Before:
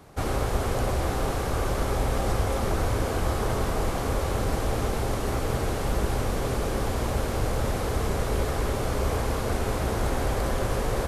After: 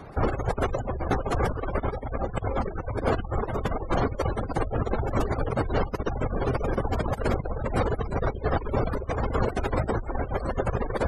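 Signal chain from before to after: negative-ratio compressor -28 dBFS, ratio -0.5; reverb removal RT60 1.2 s; spectral gate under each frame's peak -25 dB strong; gain +5 dB

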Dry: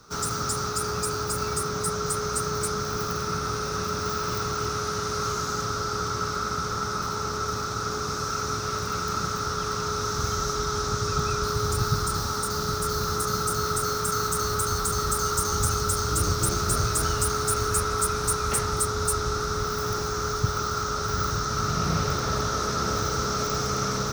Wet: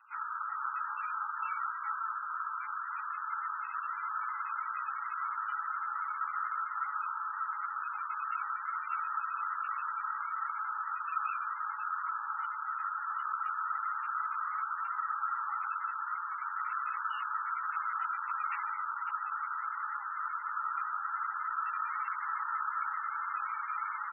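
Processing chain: steep high-pass 900 Hz 48 dB/oct; flange 1 Hz, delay 3.3 ms, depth 6 ms, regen -63%; 0.57–2.13 doubler 31 ms -3 dB; feedback echo 0.457 s, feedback 34%, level -18 dB; MP3 8 kbps 24000 Hz

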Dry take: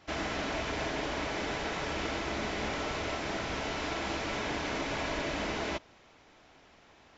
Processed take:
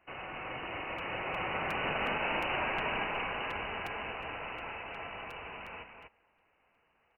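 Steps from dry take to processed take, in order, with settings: Doppler pass-by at 2.31, 23 m/s, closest 9.8 m; bell 2200 Hz +10.5 dB 1.3 oct; inverted band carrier 2900 Hz; limiter -26.5 dBFS, peak gain reduction 9 dB; on a send: echo 0.244 s -6 dB; on the sum: crackling interface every 0.36 s, samples 256, repeat, from 0.98; gain +1.5 dB

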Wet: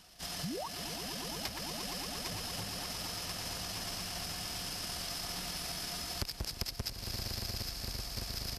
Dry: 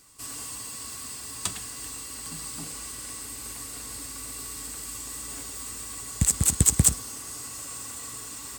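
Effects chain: half-waves squared off; painted sound rise, 0.43–0.67, 220–1900 Hz -28 dBFS; swelling echo 0.115 s, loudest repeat 8, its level -13 dB; compressor 16:1, threshold -29 dBFS, peak gain reduction 19 dB; pitch shift -8 st; gain -5.5 dB

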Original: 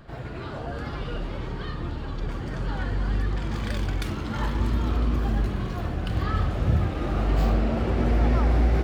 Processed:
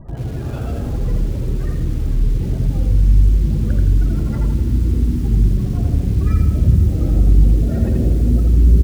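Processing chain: in parallel at 0 dB: compressor 16:1, threshold -28 dBFS, peak gain reduction 12.5 dB; on the sum: dynamic EQ 1000 Hz, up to -5 dB, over -41 dBFS, Q 1.2; decimation with a swept rate 17×, swing 60% 0.43 Hz; low shelf 230 Hz +11 dB; on a send: frequency-shifting echo 0.475 s, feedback 40%, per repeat +110 Hz, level -19 dB; on the sum: spectral gate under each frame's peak -30 dB strong; digital reverb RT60 4.6 s, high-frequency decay 0.7×, pre-delay 25 ms, DRR 12 dB; lo-fi delay 83 ms, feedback 35%, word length 6-bit, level -4 dB; gain -3 dB

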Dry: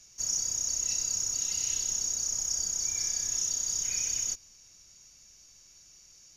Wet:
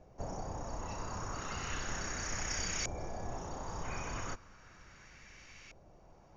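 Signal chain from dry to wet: vocal rider 0.5 s; companded quantiser 6-bit; LFO low-pass saw up 0.35 Hz 640–2400 Hz; gain +10 dB

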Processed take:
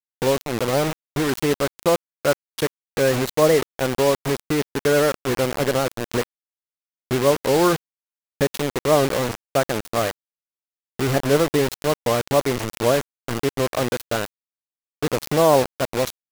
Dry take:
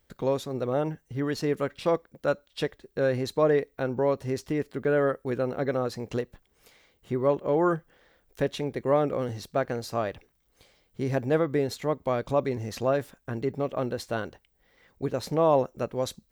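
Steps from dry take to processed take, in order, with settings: bit-crush 5-bit; record warp 78 rpm, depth 160 cents; gain +6 dB

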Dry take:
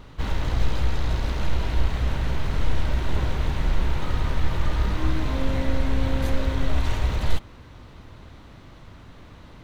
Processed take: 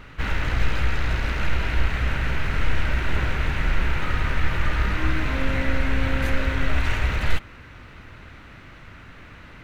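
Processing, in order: band shelf 1900 Hz +9.5 dB 1.3 oct

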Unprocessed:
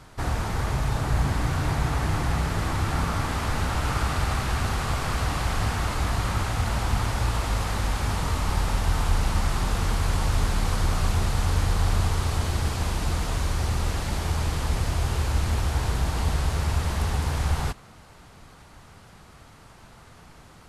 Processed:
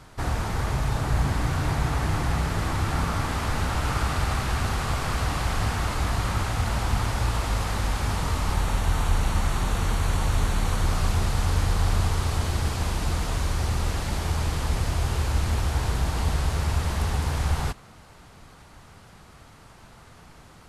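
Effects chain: 8.54–10.86 notch 5000 Hz, Q 7.3

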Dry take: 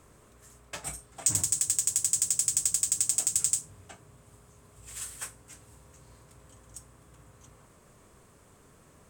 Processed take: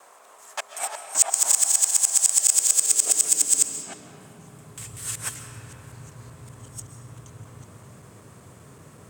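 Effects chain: local time reversal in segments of 0.191 s; high-pass sweep 750 Hz -> 110 Hz, 2.2–4.95; digital reverb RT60 3.8 s, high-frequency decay 0.45×, pre-delay 95 ms, DRR 6.5 dB; gain +7.5 dB

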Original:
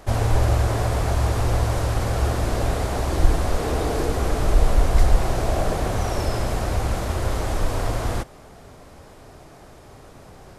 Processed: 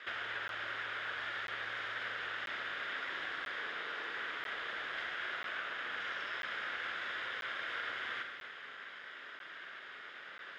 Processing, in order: minimum comb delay 0.58 ms; Bessel high-pass 890 Hz, order 2; air absorption 220 m; compressor 6:1, threshold -45 dBFS, peak gain reduction 13.5 dB; band shelf 2300 Hz +11.5 dB; Schroeder reverb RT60 2 s, combs from 32 ms, DRR 3.5 dB; crackling interface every 0.99 s, samples 512, zero, from 0.48; gain -2.5 dB

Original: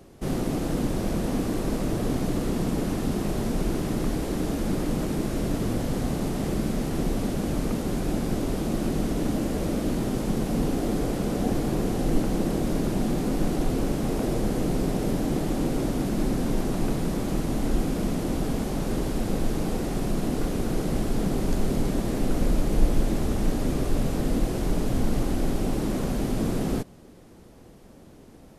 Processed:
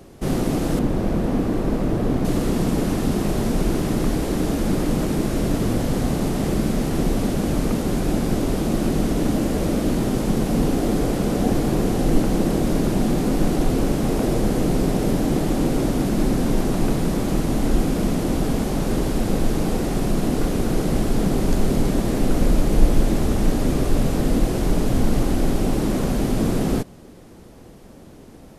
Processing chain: 0.79–2.25 bell 9200 Hz -11 dB 2.7 oct; gain +5.5 dB

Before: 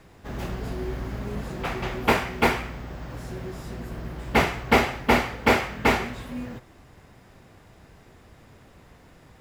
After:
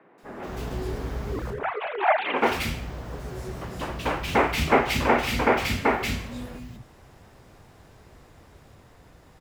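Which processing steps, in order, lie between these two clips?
1.32–2.31 sine-wave speech; echoes that change speed 0.179 s, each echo +2 st, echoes 3, each echo -6 dB; three bands offset in time mids, highs, lows 0.18/0.23 s, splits 210/2300 Hz

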